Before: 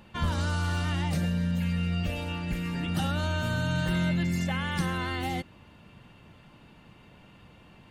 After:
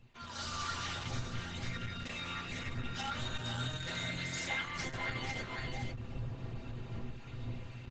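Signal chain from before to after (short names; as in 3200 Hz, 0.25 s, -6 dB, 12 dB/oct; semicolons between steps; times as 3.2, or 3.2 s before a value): wind noise 99 Hz -28 dBFS; downsampling 16000 Hz; low shelf 420 Hz -9 dB; on a send: echo 0.493 s -6 dB; on the sum: AGC gain up to 15.5 dB; high shelf 3300 Hz +6.5 dB; compressor 3:1, threshold -20 dBFS, peak gain reduction 9.5 dB; metallic resonator 120 Hz, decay 0.2 s, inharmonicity 0.008; gain -6.5 dB; Opus 10 kbps 48000 Hz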